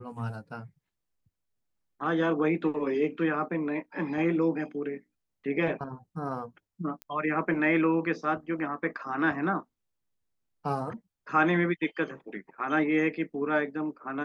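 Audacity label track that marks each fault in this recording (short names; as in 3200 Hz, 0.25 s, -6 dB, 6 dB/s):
7.020000	7.020000	pop -23 dBFS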